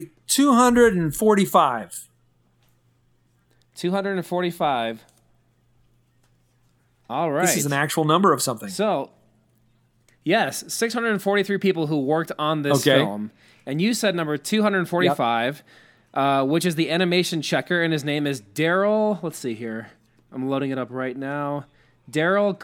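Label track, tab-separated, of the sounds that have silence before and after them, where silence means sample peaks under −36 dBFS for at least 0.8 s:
3.780000	5.000000	sound
7.100000	9.060000	sound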